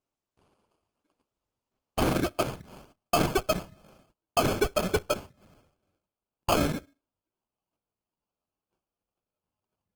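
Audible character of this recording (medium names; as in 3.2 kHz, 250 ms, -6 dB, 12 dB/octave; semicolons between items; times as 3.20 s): aliases and images of a low sample rate 1.9 kHz, jitter 0%; Opus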